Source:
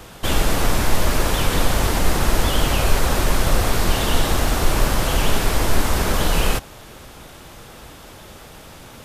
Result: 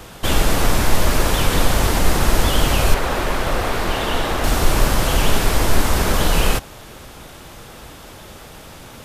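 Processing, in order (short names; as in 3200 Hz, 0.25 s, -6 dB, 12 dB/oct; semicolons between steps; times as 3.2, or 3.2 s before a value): 2.94–4.44 tone controls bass -7 dB, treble -9 dB; gain +2 dB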